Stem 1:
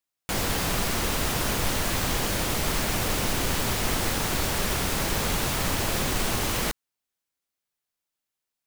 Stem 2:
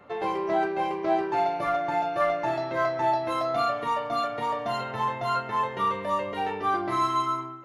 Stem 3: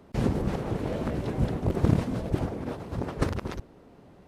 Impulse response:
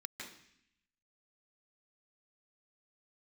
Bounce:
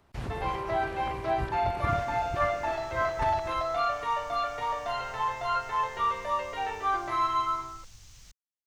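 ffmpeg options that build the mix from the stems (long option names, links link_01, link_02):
-filter_complex "[0:a]firequalizer=gain_entry='entry(130,0);entry(410,-19);entry(6200,5);entry(10000,-11)':delay=0.05:min_phase=1,adelay=1600,volume=-19dB[link_01];[1:a]lowshelf=frequency=470:gain=-4.5,adelay=200,volume=0dB[link_02];[2:a]equalizer=frequency=490:width_type=o:width=0.77:gain=-7.5,volume=-3.5dB[link_03];[link_01][link_02][link_03]amix=inputs=3:normalize=0,equalizer=frequency=220:width=0.92:gain=-13,acrossover=split=4200[link_04][link_05];[link_05]acompressor=threshold=-56dB:ratio=4:attack=1:release=60[link_06];[link_04][link_06]amix=inputs=2:normalize=0"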